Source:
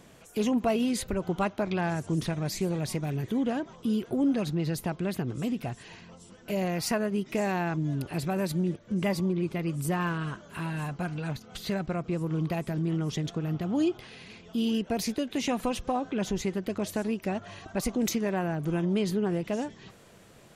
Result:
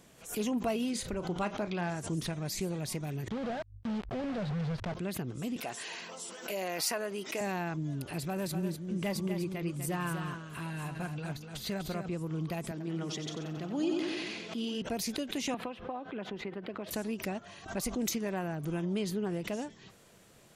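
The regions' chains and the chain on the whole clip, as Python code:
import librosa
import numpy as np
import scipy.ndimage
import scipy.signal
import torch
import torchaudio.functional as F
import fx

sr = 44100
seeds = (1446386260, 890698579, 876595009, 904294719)

y = fx.chain(x, sr, fx.lowpass(hz=8500.0, slope=12),
    fx.doubler(ms=34.0, db=-12.5), at=(0.9, 2.01))
y = fx.chain(y, sr, fx.fixed_phaser(hz=1600.0, stages=8),
    fx.quant_companded(bits=2),
    fx.spacing_loss(db_at_10k=33), at=(3.28, 4.95))
y = fx.chain(y, sr, fx.highpass(hz=420.0, slope=12),
    fx.env_flatten(amount_pct=50), at=(5.56, 7.41))
y = fx.chain(y, sr, fx.overload_stage(gain_db=19.5),
    fx.echo_single(ms=247, db=-7.5), at=(8.21, 12.09))
y = fx.chain(y, sr, fx.bandpass_edges(low_hz=210.0, high_hz=7500.0),
    fx.echo_feedback(ms=91, feedback_pct=54, wet_db=-7.5),
    fx.sustainer(db_per_s=27.0), at=(12.71, 14.82))
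y = fx.chain(y, sr, fx.highpass(hz=420.0, slope=6),
    fx.air_absorb(metres=450.0),
    fx.band_squash(depth_pct=100), at=(15.54, 16.91))
y = fx.high_shelf(y, sr, hz=4100.0, db=6.0)
y = fx.hum_notches(y, sr, base_hz=50, count=2)
y = fx.pre_swell(y, sr, db_per_s=130.0)
y = F.gain(torch.from_numpy(y), -6.0).numpy()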